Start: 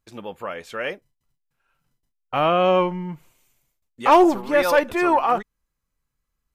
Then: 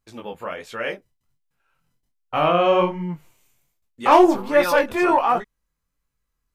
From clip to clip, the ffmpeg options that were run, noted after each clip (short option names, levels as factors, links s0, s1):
-af "flanger=delay=17:depth=8:speed=1.3,volume=1.5"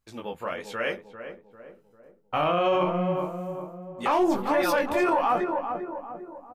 -filter_complex "[0:a]asplit=2[s0][s1];[s1]adelay=397,lowpass=f=1100:p=1,volume=0.376,asplit=2[s2][s3];[s3]adelay=397,lowpass=f=1100:p=1,volume=0.51,asplit=2[s4][s5];[s5]adelay=397,lowpass=f=1100:p=1,volume=0.51,asplit=2[s6][s7];[s7]adelay=397,lowpass=f=1100:p=1,volume=0.51,asplit=2[s8][s9];[s9]adelay=397,lowpass=f=1100:p=1,volume=0.51,asplit=2[s10][s11];[s11]adelay=397,lowpass=f=1100:p=1,volume=0.51[s12];[s0][s2][s4][s6][s8][s10][s12]amix=inputs=7:normalize=0,alimiter=limit=0.211:level=0:latency=1:release=48,volume=0.841"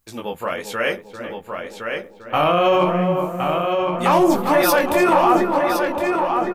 -filter_complex "[0:a]highshelf=f=8300:g=12,asplit=2[s0][s1];[s1]adelay=1064,lowpass=f=4800:p=1,volume=0.596,asplit=2[s2][s3];[s3]adelay=1064,lowpass=f=4800:p=1,volume=0.39,asplit=2[s4][s5];[s5]adelay=1064,lowpass=f=4800:p=1,volume=0.39,asplit=2[s6][s7];[s7]adelay=1064,lowpass=f=4800:p=1,volume=0.39,asplit=2[s8][s9];[s9]adelay=1064,lowpass=f=4800:p=1,volume=0.39[s10];[s2][s4][s6][s8][s10]amix=inputs=5:normalize=0[s11];[s0][s11]amix=inputs=2:normalize=0,volume=2.24"